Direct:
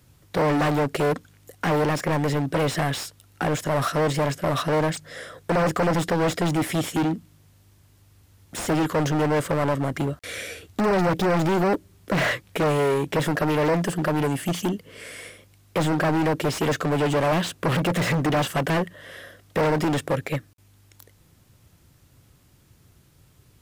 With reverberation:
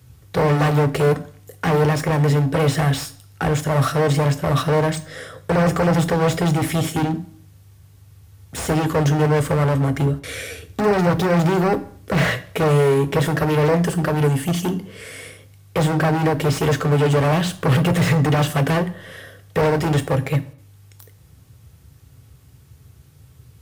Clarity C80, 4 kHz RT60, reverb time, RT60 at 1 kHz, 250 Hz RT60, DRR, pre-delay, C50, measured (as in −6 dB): 20.5 dB, 0.55 s, 0.55 s, 0.55 s, 0.50 s, 8.0 dB, 3 ms, 17.0 dB